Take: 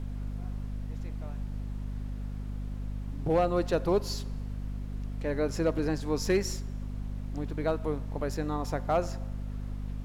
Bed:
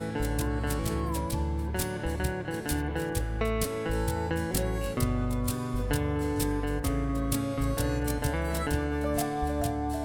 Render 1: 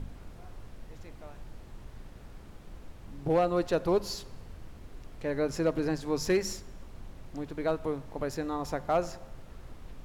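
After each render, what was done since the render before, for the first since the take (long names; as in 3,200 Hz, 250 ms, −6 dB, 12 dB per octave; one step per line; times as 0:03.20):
hum removal 50 Hz, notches 5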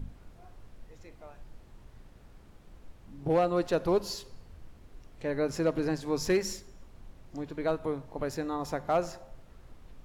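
noise reduction from a noise print 6 dB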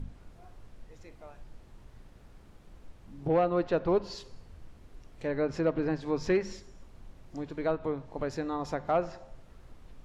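treble cut that deepens with the level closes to 2,900 Hz, closed at −26 dBFS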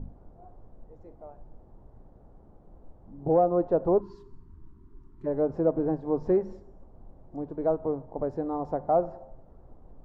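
0:04.00–0:05.26: gain on a spectral selection 420–900 Hz −26 dB
drawn EQ curve 110 Hz 0 dB, 770 Hz +5 dB, 2,500 Hz −24 dB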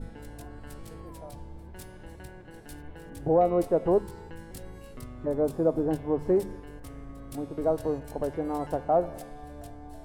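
mix in bed −15 dB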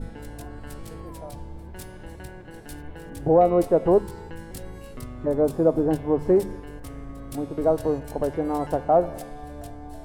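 level +5 dB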